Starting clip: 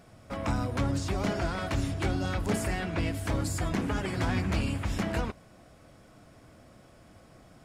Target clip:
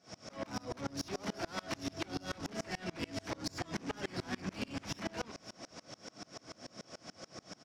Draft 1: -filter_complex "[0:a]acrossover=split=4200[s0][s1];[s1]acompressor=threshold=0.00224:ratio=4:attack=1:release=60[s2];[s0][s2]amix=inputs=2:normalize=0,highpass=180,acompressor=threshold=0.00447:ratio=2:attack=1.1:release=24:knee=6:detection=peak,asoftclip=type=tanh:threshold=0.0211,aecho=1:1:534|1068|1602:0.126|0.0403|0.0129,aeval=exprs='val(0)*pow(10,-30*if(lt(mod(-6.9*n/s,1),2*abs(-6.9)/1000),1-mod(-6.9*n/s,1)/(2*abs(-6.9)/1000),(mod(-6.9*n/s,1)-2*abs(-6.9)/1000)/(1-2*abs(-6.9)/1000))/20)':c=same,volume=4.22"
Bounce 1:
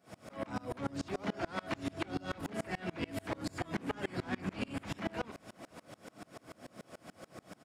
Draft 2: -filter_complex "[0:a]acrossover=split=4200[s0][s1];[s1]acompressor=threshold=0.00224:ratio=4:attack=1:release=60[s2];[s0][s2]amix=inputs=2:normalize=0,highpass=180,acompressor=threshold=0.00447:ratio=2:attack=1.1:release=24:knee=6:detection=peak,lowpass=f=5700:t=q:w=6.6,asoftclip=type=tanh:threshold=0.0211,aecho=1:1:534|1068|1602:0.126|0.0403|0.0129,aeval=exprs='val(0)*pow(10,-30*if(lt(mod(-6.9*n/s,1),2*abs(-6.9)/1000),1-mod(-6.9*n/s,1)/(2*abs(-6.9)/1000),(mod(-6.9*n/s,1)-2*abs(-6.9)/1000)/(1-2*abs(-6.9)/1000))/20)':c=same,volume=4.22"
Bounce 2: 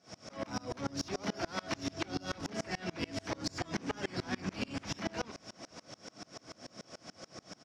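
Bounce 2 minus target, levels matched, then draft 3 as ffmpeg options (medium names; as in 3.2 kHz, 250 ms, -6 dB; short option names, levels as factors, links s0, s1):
saturation: distortion -9 dB
-filter_complex "[0:a]acrossover=split=4200[s0][s1];[s1]acompressor=threshold=0.00224:ratio=4:attack=1:release=60[s2];[s0][s2]amix=inputs=2:normalize=0,highpass=180,acompressor=threshold=0.00447:ratio=2:attack=1.1:release=24:knee=6:detection=peak,lowpass=f=5700:t=q:w=6.6,asoftclip=type=tanh:threshold=0.00944,aecho=1:1:534|1068|1602:0.126|0.0403|0.0129,aeval=exprs='val(0)*pow(10,-30*if(lt(mod(-6.9*n/s,1),2*abs(-6.9)/1000),1-mod(-6.9*n/s,1)/(2*abs(-6.9)/1000),(mod(-6.9*n/s,1)-2*abs(-6.9)/1000)/(1-2*abs(-6.9)/1000))/20)':c=same,volume=4.22"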